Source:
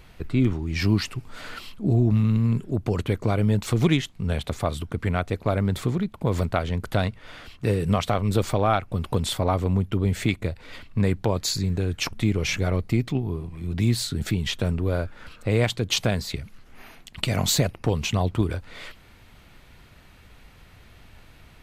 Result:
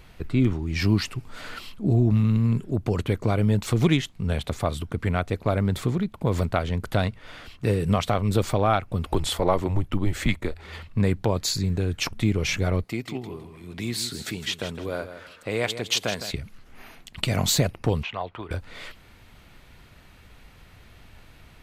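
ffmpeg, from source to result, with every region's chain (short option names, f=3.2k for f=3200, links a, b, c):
-filter_complex "[0:a]asettb=1/sr,asplit=3[a][b][c];[a]atrim=end=9.054[d];[b]atrim=start=9.05:end=10.88,asetpts=PTS-STARTPTS,afade=t=in:d=0.004:c=qsin,afade=t=out:st=1.826:d=0.004:c=qsin,equalizer=f=860:t=o:w=2.2:g=3.5,afreqshift=-91[e];[c]atrim=start=10.876[f];[d][e]acrossfade=d=0.004:c1=hsin:c2=qsin[g];[g][f]acrossfade=d=0.004:c1=qsin:c2=hsin,asettb=1/sr,asplit=3[h][i][j];[h]atrim=end=12.844[k];[i]atrim=start=12.84:end=16.31,asetpts=PTS-STARTPTS,afade=t=in:d=0.004:c=qsin,afade=t=out:st=3.466:d=0.004:c=qsin,highpass=f=470:p=1,aecho=1:1:160|320|480:0.282|0.0705|0.0176,atrim=end_sample=153027[l];[j]atrim=start=16.306[m];[k][l]acrossfade=d=0.004:c1=hsin:c2=qsin[n];[n][m]acrossfade=d=0.004:c1=qsin:c2=hsin,asettb=1/sr,asplit=3[o][p][q];[o]atrim=end=18.034[r];[p]atrim=start=18.03:end=18.51,asetpts=PTS-STARTPTS,afade=t=in:d=0.004:c=qsin,afade=t=out:st=0.476:d=0.004:c=qsin,acrossover=split=4000[s][t];[t]acompressor=threshold=-41dB:ratio=4:attack=1:release=60[u];[s][u]amix=inputs=2:normalize=0,acrossover=split=540 3400:gain=0.112 1 0.0708[v][w][x];[v][w][x]amix=inputs=3:normalize=0[y];[q]atrim=start=18.506[z];[r][y]acrossfade=d=0.004:c1=hsin:c2=qsin[aa];[aa][z]acrossfade=d=0.004:c1=qsin:c2=hsin"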